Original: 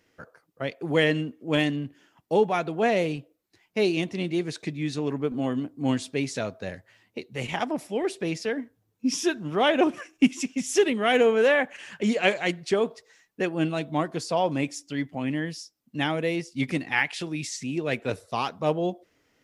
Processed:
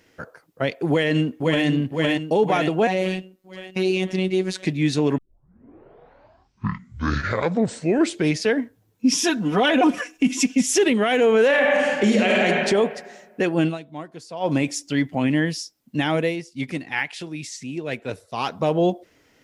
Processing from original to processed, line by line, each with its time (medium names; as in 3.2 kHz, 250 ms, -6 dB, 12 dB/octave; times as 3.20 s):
0.89–1.66 s: echo throw 510 ms, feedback 55%, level -5.5 dB
2.87–4.65 s: robot voice 187 Hz
5.18 s: tape start 3.34 s
9.23–10.66 s: comb 4.1 ms, depth 84%
11.46–12.46 s: reverb throw, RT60 1.4 s, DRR -1 dB
13.65–14.53 s: dip -17 dB, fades 0.13 s
16.12–18.60 s: dip -9.5 dB, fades 0.24 s
whole clip: band-stop 1.2 kHz, Q 18; peak limiter -18.5 dBFS; trim +8.5 dB